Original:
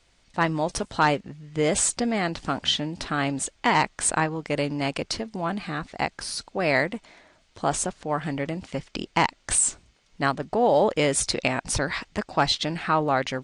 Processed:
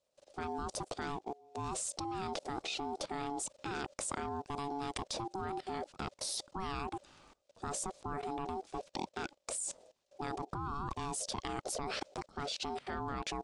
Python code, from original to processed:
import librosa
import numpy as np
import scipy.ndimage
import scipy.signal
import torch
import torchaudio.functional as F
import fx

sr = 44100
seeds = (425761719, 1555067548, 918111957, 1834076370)

y = fx.peak_eq(x, sr, hz=1500.0, db=-12.5, octaves=2.0)
y = y * np.sin(2.0 * np.pi * 570.0 * np.arange(len(y)) / sr)
y = fx.level_steps(y, sr, step_db=22)
y = y * librosa.db_to_amplitude(5.5)